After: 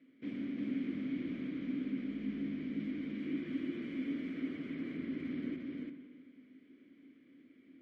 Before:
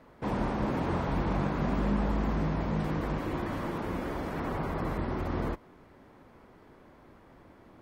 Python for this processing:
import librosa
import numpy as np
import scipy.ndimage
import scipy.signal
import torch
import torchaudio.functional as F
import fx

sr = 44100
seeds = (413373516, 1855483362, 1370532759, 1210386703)

p1 = fx.highpass(x, sr, hz=120.0, slope=6)
p2 = fx.rider(p1, sr, range_db=10, speed_s=0.5)
p3 = fx.vowel_filter(p2, sr, vowel='i')
p4 = p3 + fx.echo_single(p3, sr, ms=349, db=-3.0, dry=0)
p5 = fx.rev_spring(p4, sr, rt60_s=1.9, pass_ms=(43, 57), chirp_ms=45, drr_db=8.0)
y = F.gain(torch.from_numpy(p5), 1.5).numpy()